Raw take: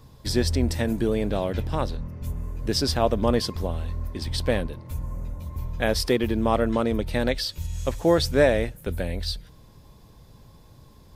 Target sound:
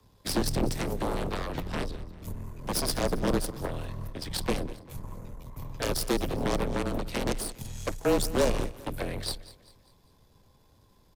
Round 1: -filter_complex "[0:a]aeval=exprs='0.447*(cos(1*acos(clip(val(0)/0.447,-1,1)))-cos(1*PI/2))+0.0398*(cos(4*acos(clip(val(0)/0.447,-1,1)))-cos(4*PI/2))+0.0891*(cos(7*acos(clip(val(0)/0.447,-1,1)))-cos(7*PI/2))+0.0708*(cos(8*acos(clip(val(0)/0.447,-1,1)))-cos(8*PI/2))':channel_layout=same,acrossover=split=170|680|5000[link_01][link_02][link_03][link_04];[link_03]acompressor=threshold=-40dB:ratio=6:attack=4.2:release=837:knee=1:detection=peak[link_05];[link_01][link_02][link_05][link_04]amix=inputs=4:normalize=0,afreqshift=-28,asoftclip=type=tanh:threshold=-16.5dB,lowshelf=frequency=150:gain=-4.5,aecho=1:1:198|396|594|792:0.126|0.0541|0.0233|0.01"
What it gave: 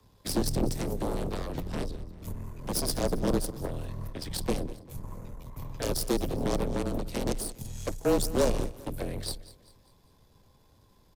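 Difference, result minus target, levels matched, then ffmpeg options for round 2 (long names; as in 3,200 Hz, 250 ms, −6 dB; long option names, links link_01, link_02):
downward compressor: peak gain reduction +8 dB
-filter_complex "[0:a]aeval=exprs='0.447*(cos(1*acos(clip(val(0)/0.447,-1,1)))-cos(1*PI/2))+0.0398*(cos(4*acos(clip(val(0)/0.447,-1,1)))-cos(4*PI/2))+0.0891*(cos(7*acos(clip(val(0)/0.447,-1,1)))-cos(7*PI/2))+0.0708*(cos(8*acos(clip(val(0)/0.447,-1,1)))-cos(8*PI/2))':channel_layout=same,acrossover=split=170|680|5000[link_01][link_02][link_03][link_04];[link_03]acompressor=threshold=-30.5dB:ratio=6:attack=4.2:release=837:knee=1:detection=peak[link_05];[link_01][link_02][link_05][link_04]amix=inputs=4:normalize=0,afreqshift=-28,asoftclip=type=tanh:threshold=-16.5dB,lowshelf=frequency=150:gain=-4.5,aecho=1:1:198|396|594|792:0.126|0.0541|0.0233|0.01"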